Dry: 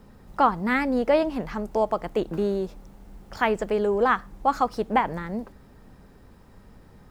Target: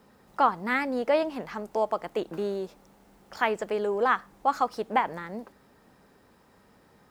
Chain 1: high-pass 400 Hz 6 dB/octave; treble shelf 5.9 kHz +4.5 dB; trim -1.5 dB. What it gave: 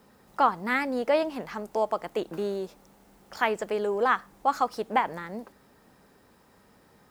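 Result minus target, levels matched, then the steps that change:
8 kHz band +2.5 dB
remove: treble shelf 5.9 kHz +4.5 dB

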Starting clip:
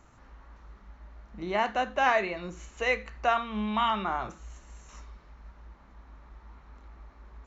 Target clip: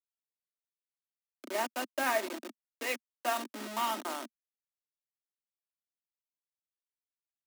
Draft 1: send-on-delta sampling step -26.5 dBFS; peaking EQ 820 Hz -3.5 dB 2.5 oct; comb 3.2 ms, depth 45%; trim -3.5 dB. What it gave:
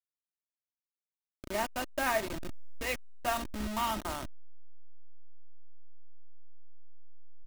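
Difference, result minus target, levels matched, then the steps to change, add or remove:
250 Hz band +2.5 dB
add after send-on-delta sampling: steep high-pass 230 Hz 72 dB/octave

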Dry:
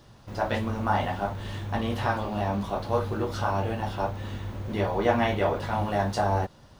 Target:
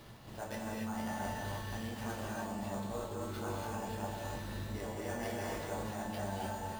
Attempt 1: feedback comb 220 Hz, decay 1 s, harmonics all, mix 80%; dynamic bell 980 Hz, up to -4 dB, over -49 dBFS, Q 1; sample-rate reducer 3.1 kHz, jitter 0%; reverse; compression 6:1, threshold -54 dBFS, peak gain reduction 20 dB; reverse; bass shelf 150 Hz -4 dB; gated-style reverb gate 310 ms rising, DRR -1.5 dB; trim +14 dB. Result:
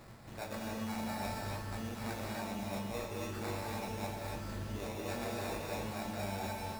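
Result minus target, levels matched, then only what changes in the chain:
sample-rate reducer: distortion +6 dB
change: sample-rate reducer 7.8 kHz, jitter 0%

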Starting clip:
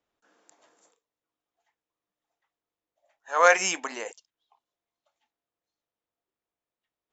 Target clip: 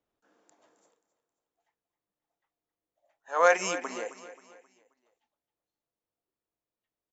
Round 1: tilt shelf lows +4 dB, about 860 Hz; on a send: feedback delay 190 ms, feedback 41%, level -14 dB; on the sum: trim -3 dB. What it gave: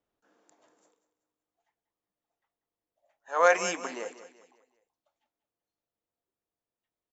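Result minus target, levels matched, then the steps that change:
echo 76 ms early
change: feedback delay 266 ms, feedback 41%, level -14 dB

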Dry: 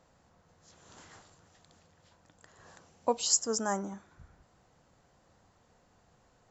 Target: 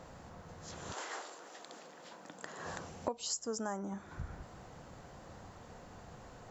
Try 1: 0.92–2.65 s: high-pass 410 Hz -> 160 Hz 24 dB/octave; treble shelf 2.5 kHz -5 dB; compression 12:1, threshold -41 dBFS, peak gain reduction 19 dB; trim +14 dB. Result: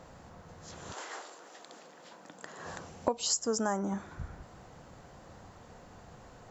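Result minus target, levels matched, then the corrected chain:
compression: peak gain reduction -7.5 dB
0.92–2.65 s: high-pass 410 Hz -> 160 Hz 24 dB/octave; treble shelf 2.5 kHz -5 dB; compression 12:1, threshold -49 dBFS, peak gain reduction 26 dB; trim +14 dB

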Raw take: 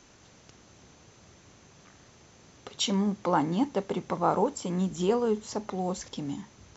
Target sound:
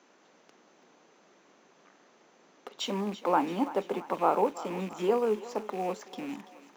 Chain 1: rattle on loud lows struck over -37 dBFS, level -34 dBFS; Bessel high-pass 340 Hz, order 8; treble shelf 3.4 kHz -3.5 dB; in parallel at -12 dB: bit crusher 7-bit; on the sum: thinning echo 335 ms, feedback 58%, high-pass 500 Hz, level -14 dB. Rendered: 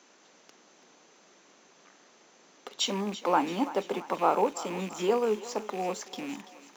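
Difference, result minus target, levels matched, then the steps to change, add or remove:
8 kHz band +8.0 dB
change: treble shelf 3.4 kHz -15 dB

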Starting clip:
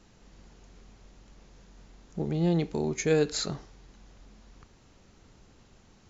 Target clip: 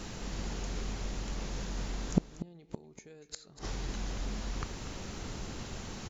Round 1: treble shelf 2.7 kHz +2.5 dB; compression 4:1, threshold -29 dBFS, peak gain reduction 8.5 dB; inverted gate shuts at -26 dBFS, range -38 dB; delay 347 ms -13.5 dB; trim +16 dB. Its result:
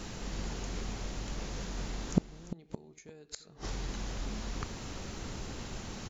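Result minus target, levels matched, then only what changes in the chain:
echo 106 ms late
change: delay 241 ms -13.5 dB

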